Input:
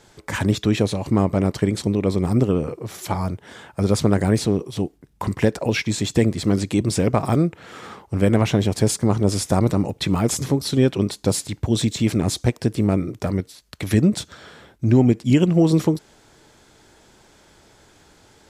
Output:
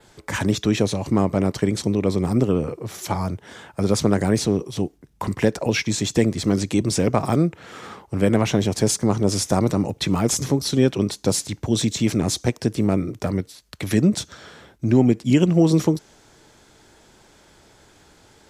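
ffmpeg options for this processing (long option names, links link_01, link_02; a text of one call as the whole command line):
ffmpeg -i in.wav -filter_complex "[0:a]adynamicequalizer=threshold=0.00447:dfrequency=6000:dqfactor=3.4:tfrequency=6000:tqfactor=3.4:attack=5:release=100:ratio=0.375:range=3:mode=boostabove:tftype=bell,acrossover=split=130[link_01][link_02];[link_01]alimiter=level_in=2.5dB:limit=-24dB:level=0:latency=1,volume=-2.5dB[link_03];[link_03][link_02]amix=inputs=2:normalize=0" out.wav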